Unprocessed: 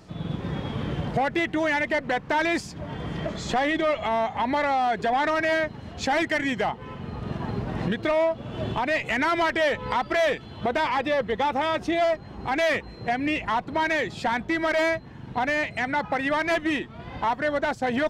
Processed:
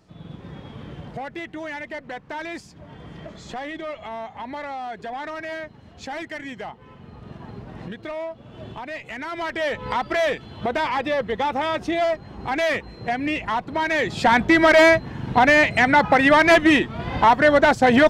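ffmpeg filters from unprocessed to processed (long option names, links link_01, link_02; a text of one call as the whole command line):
ffmpeg -i in.wav -af "volume=10dB,afade=type=in:start_time=9.28:duration=0.63:silence=0.334965,afade=type=in:start_time=13.89:duration=0.5:silence=0.354813" out.wav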